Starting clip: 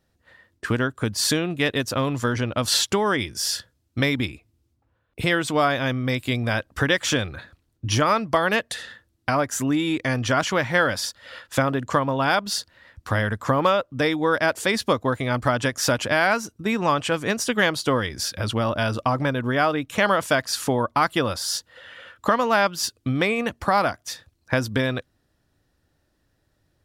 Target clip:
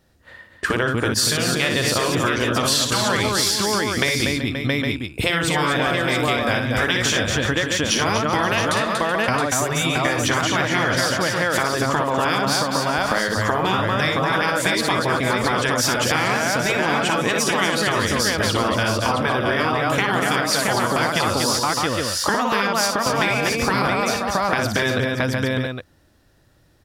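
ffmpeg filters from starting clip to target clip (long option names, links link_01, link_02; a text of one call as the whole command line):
ffmpeg -i in.wav -af "aecho=1:1:59|238|379|526|671|810:0.473|0.447|0.141|0.168|0.447|0.251,afftfilt=real='re*lt(hypot(re,im),0.501)':imag='im*lt(hypot(re,im),0.501)':win_size=1024:overlap=0.75,acompressor=threshold=-25dB:ratio=6,volume=8.5dB" out.wav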